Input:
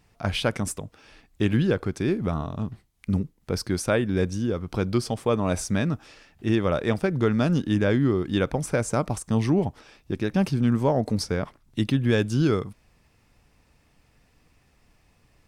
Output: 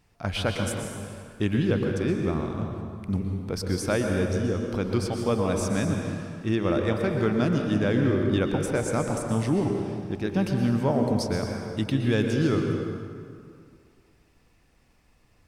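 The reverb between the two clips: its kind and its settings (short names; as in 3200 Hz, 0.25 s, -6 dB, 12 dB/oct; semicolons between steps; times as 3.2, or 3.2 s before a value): plate-style reverb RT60 2.2 s, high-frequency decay 0.65×, pre-delay 0.105 s, DRR 2.5 dB; gain -3 dB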